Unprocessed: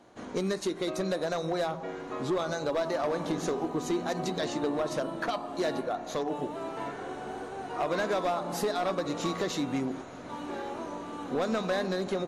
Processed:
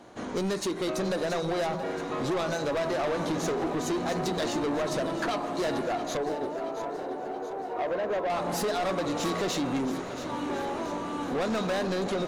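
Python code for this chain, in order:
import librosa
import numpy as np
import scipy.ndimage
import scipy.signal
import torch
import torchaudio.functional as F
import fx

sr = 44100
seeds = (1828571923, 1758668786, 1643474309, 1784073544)

y = fx.bandpass_q(x, sr, hz=540.0, q=1.3, at=(6.17, 8.3))
y = 10.0 ** (-32.0 / 20.0) * np.tanh(y / 10.0 ** (-32.0 / 20.0))
y = fx.echo_crushed(y, sr, ms=677, feedback_pct=55, bits=12, wet_db=-12.0)
y = y * 10.0 ** (6.5 / 20.0)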